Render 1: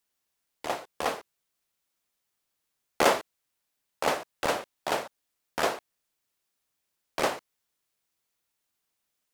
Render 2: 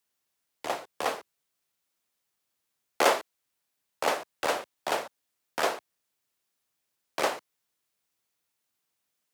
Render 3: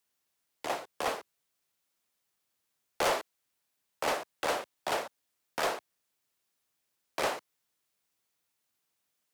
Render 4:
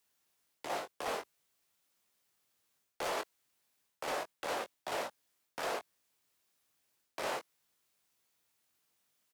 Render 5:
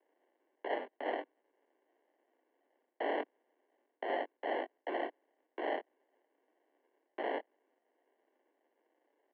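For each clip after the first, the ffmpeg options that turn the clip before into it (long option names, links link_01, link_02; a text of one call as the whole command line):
ffmpeg -i in.wav -filter_complex "[0:a]highpass=67,acrossover=split=290|1300[link_01][link_02][link_03];[link_01]acompressor=threshold=-49dB:ratio=6[link_04];[link_04][link_02][link_03]amix=inputs=3:normalize=0" out.wav
ffmpeg -i in.wav -af "asoftclip=type=tanh:threshold=-23dB" out.wav
ffmpeg -i in.wav -filter_complex "[0:a]areverse,acompressor=threshold=-37dB:ratio=10,areverse,asplit=2[link_01][link_02];[link_02]adelay=21,volume=-7dB[link_03];[link_01][link_03]amix=inputs=2:normalize=0,volume=2dB" out.wav
ffmpeg -i in.wav -af "acrusher=samples=37:mix=1:aa=0.000001,highpass=frequency=180:width_type=q:width=0.5412,highpass=frequency=180:width_type=q:width=1.307,lowpass=frequency=2700:width_type=q:width=0.5176,lowpass=frequency=2700:width_type=q:width=0.7071,lowpass=frequency=2700:width_type=q:width=1.932,afreqshift=110,volume=2dB" out.wav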